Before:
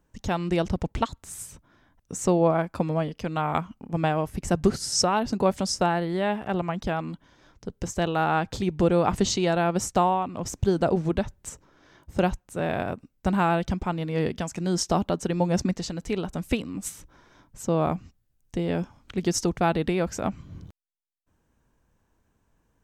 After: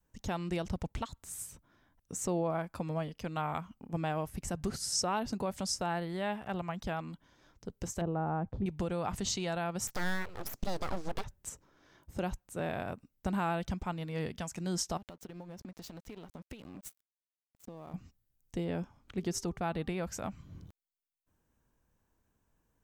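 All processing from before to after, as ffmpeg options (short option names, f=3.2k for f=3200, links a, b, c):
-filter_complex "[0:a]asettb=1/sr,asplit=3[a][b][c];[a]atrim=end=8.014[d];[b]atrim=start=8.01:end=8.66,asetpts=PTS-STARTPTS,afade=t=in:d=0.004:c=qsin,afade=t=out:st=0.646:d=0.004:c=qsin,lowpass=1.1k,tiltshelf=f=700:g=5.5,agate=range=-8dB:threshold=-38dB:ratio=16:release=100:detection=peak[e];[c]atrim=start=8.656[f];[d][e]acrossfade=d=0.004:c1=hsin:c2=qsin[g];[g][f]acrossfade=d=0.004:c1=qsin:c2=hsin,asettb=1/sr,asplit=3[h][i][j];[h]atrim=end=9.874[k];[i]atrim=start=9.87:end=11.24,asetpts=PTS-STARTPTS,afade=t=in:d=0.004:c=qsin,afade=t=out:st=1.366:d=0.004:c=qsin,deesser=0.75,equalizer=f=4.9k:t=o:w=0.86:g=8,aeval=exprs='abs(val(0))':c=same[l];[j]atrim=start=11.236[m];[k][l]acrossfade=d=0.004:c1=hsin:c2=qsin[n];[n][m]acrossfade=d=0.004:c1=qsin:c2=hsin,asettb=1/sr,asplit=3[o][p][q];[o]atrim=end=14.974[r];[p]atrim=start=14.97:end=17.94,asetpts=PTS-STARTPTS,afade=t=in:d=0.004:c=qsin,afade=t=out:st=2.966:d=0.004:c=qsin,equalizer=f=8.3k:w=1.6:g=-6,aeval=exprs='sgn(val(0))*max(abs(val(0))-0.0106,0)':c=same,acompressor=threshold=-34dB:ratio=12:attack=3.2:release=140:knee=1:detection=peak[s];[q]atrim=start=17.936[t];[r][s]acrossfade=d=0.004:c1=hsin:c2=qsin[u];[u][t]acrossfade=d=0.004:c1=qsin:c2=hsin,asettb=1/sr,asplit=3[v][w][x];[v]atrim=end=18.644[y];[w]atrim=start=18.64:end=20.03,asetpts=PTS-STARTPTS,afade=t=in:d=0.004:c=qsin,afade=t=out:st=1.386:d=0.004:c=qsin,highshelf=f=2.9k:g=-5.5,bandreject=f=393.8:t=h:w=4,bandreject=f=787.6:t=h:w=4,bandreject=f=1.1814k:t=h:w=4[z];[x]atrim=start=20.026[aa];[y][z]acrossfade=d=0.004:c1=hsin:c2=qsin[ab];[ab][aa]acrossfade=d=0.004:c1=qsin:c2=hsin,highshelf=f=11k:g=10.5,alimiter=limit=-14dB:level=0:latency=1:release=70,adynamicequalizer=threshold=0.01:dfrequency=350:dqfactor=1.1:tfrequency=350:tqfactor=1.1:attack=5:release=100:ratio=0.375:range=3:mode=cutabove:tftype=bell,volume=-7.5dB"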